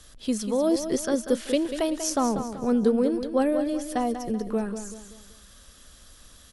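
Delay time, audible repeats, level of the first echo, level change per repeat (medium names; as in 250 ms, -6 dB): 191 ms, 4, -9.5 dB, -8.0 dB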